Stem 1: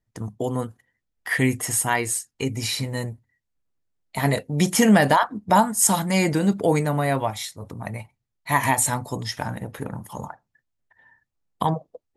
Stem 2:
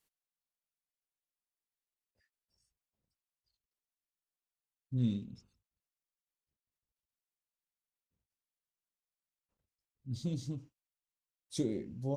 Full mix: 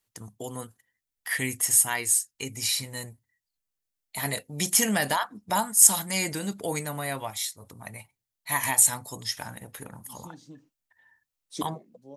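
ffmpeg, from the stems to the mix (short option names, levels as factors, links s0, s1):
-filter_complex "[0:a]highshelf=f=4000:g=-5,crystalizer=i=8.5:c=0,volume=0.237,asplit=2[s0][s1];[1:a]highpass=f=190:w=0.5412,highpass=f=190:w=1.3066,volume=1.33[s2];[s1]apad=whole_len=536391[s3];[s2][s3]sidechaincompress=threshold=0.00891:ratio=8:attack=6.1:release=1130[s4];[s0][s4]amix=inputs=2:normalize=0"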